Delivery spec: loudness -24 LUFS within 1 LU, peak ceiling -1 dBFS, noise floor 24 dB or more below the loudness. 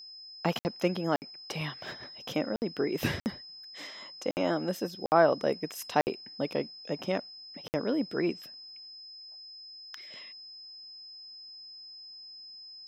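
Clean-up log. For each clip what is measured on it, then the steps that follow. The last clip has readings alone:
dropouts 8; longest dropout 59 ms; steady tone 5.1 kHz; tone level -45 dBFS; loudness -32.0 LUFS; peak level -9.0 dBFS; loudness target -24.0 LUFS
-> interpolate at 0.59/1.16/2.56/3.20/4.31/5.06/6.01/7.68 s, 59 ms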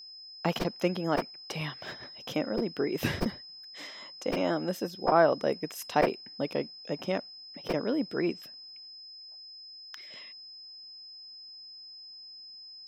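dropouts 0; steady tone 5.1 kHz; tone level -45 dBFS
-> band-stop 5.1 kHz, Q 30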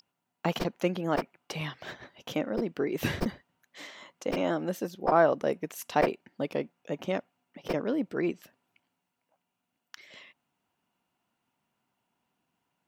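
steady tone not found; loudness -31.0 LUFS; peak level -9.0 dBFS; loudness target -24.0 LUFS
-> trim +7 dB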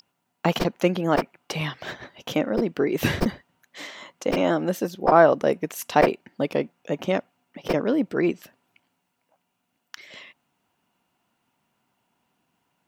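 loudness -24.0 LUFS; peak level -2.0 dBFS; noise floor -76 dBFS

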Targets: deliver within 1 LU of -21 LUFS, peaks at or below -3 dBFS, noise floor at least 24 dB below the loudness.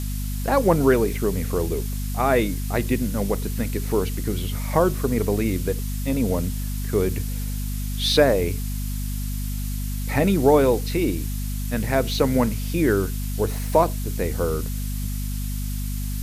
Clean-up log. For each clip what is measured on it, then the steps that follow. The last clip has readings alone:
hum 50 Hz; highest harmonic 250 Hz; hum level -25 dBFS; noise floor -27 dBFS; noise floor target -48 dBFS; loudness -23.5 LUFS; peak level -4.5 dBFS; loudness target -21.0 LUFS
-> hum notches 50/100/150/200/250 Hz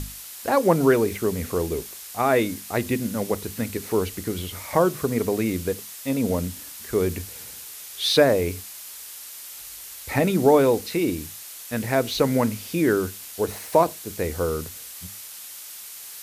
hum not found; noise floor -40 dBFS; noise floor target -48 dBFS
-> noise print and reduce 8 dB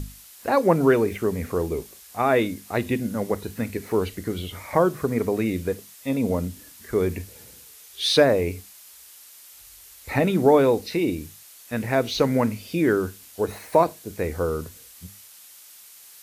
noise floor -48 dBFS; loudness -24.0 LUFS; peak level -5.0 dBFS; loudness target -21.0 LUFS
-> trim +3 dB; peak limiter -3 dBFS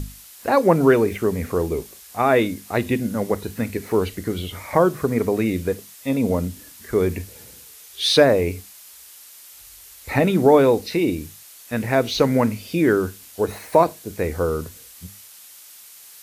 loudness -21.0 LUFS; peak level -3.0 dBFS; noise floor -45 dBFS

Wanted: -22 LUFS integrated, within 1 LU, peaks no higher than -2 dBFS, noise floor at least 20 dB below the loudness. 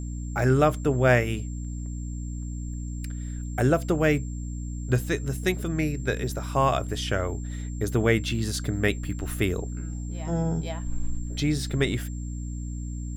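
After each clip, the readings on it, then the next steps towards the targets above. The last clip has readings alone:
hum 60 Hz; highest harmonic 300 Hz; hum level -30 dBFS; steady tone 7.4 kHz; tone level -48 dBFS; loudness -27.5 LUFS; peak level -7.0 dBFS; loudness target -22.0 LUFS
-> hum notches 60/120/180/240/300 Hz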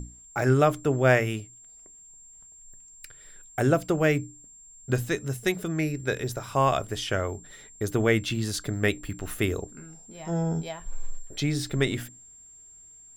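hum not found; steady tone 7.4 kHz; tone level -48 dBFS
-> band-stop 7.4 kHz, Q 30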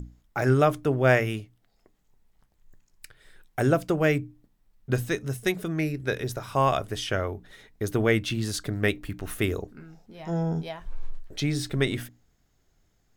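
steady tone not found; loudness -27.0 LUFS; peak level -7.5 dBFS; loudness target -22.0 LUFS
-> trim +5 dB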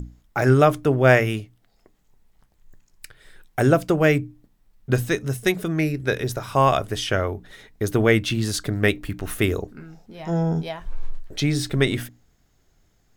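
loudness -22.0 LUFS; peak level -2.5 dBFS; noise floor -63 dBFS

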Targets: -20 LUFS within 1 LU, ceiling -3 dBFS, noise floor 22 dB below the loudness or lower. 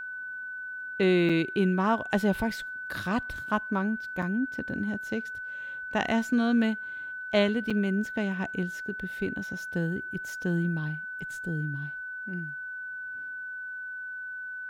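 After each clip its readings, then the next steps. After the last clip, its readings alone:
dropouts 3; longest dropout 5.3 ms; steady tone 1.5 kHz; tone level -35 dBFS; loudness -30.0 LUFS; peak level -11.0 dBFS; loudness target -20.0 LUFS
-> interpolate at 1.29/4.22/7.70 s, 5.3 ms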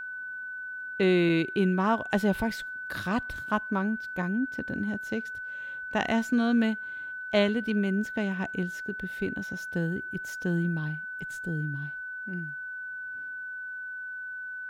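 dropouts 0; steady tone 1.5 kHz; tone level -35 dBFS
-> band-stop 1.5 kHz, Q 30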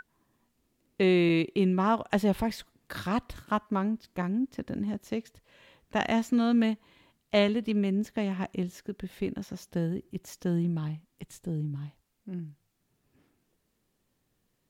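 steady tone not found; loudness -29.5 LUFS; peak level -11.0 dBFS; loudness target -20.0 LUFS
-> trim +9.5 dB; peak limiter -3 dBFS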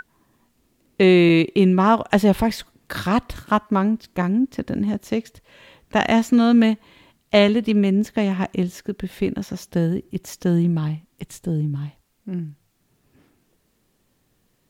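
loudness -20.0 LUFS; peak level -3.0 dBFS; noise floor -67 dBFS

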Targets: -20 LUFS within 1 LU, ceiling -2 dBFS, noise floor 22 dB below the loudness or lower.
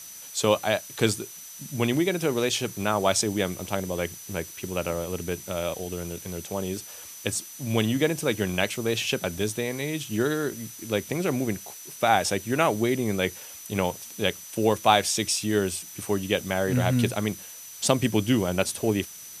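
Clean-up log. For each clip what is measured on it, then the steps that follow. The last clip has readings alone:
steady tone 6 kHz; tone level -44 dBFS; noise floor -43 dBFS; noise floor target -49 dBFS; loudness -26.5 LUFS; peak level -3.5 dBFS; loudness target -20.0 LUFS
-> band-stop 6 kHz, Q 30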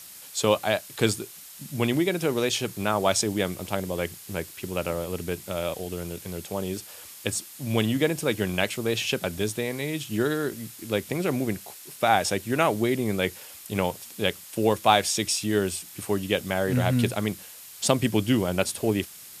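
steady tone not found; noise floor -45 dBFS; noise floor target -49 dBFS
-> noise print and reduce 6 dB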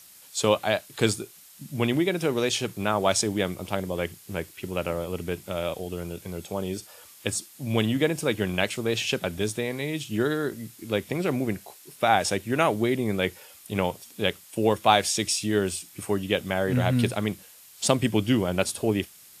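noise floor -51 dBFS; loudness -26.5 LUFS; peak level -3.5 dBFS; loudness target -20.0 LUFS
-> trim +6.5 dB; peak limiter -2 dBFS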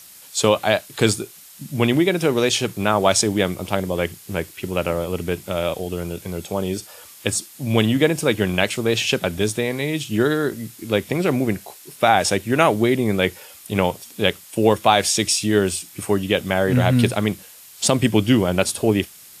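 loudness -20.5 LUFS; peak level -2.0 dBFS; noise floor -44 dBFS

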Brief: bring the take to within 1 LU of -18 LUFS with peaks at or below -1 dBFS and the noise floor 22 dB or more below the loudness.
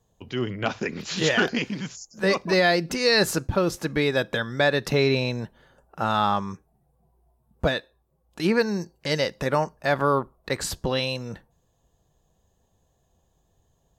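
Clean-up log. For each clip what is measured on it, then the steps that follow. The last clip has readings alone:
loudness -24.5 LUFS; peak level -9.0 dBFS; loudness target -18.0 LUFS
-> trim +6.5 dB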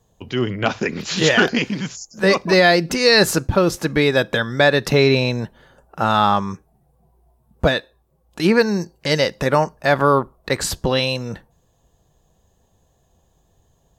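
loudness -18.0 LUFS; peak level -2.5 dBFS; noise floor -62 dBFS

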